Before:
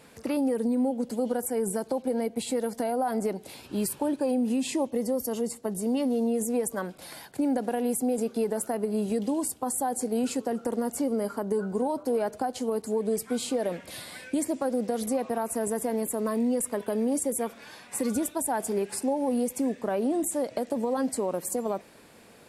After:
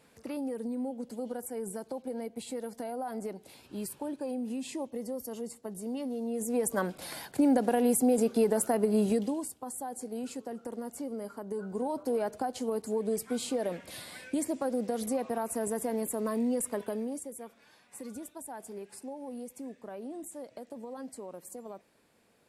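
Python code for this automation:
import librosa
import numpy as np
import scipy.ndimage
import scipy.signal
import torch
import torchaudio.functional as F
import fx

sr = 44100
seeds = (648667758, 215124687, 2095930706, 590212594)

y = fx.gain(x, sr, db=fx.line((6.23, -9.0), (6.78, 2.0), (9.08, 2.0), (9.52, -10.0), (11.43, -10.0), (11.99, -3.5), (16.82, -3.5), (17.31, -14.5)))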